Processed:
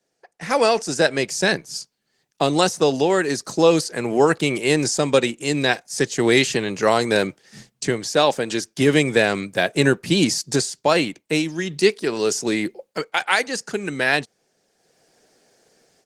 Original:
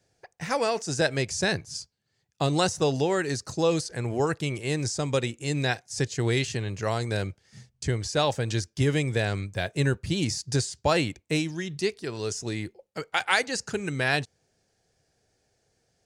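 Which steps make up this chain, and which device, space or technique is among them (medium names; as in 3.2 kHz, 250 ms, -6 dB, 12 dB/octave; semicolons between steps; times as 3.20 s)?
8.06–8.64 s: dynamic bell 110 Hz, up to -5 dB, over -39 dBFS, Q 1.6; video call (high-pass 180 Hz 24 dB/octave; level rider gain up to 16 dB; trim -1 dB; Opus 20 kbps 48 kHz)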